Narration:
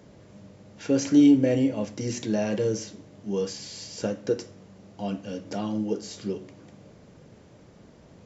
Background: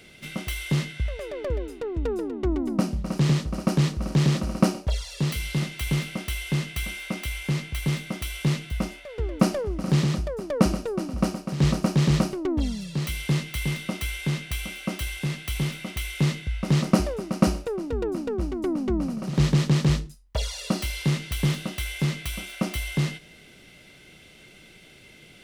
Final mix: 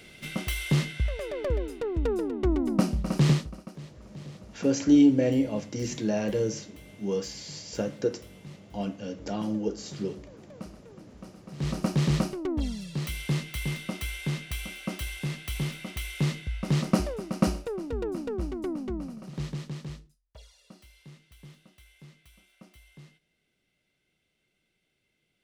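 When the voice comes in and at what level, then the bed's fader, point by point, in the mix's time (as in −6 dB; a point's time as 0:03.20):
3.75 s, −1.5 dB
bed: 0:03.31 0 dB
0:03.73 −22 dB
0:11.24 −22 dB
0:11.83 −4 dB
0:18.52 −4 dB
0:20.64 −26 dB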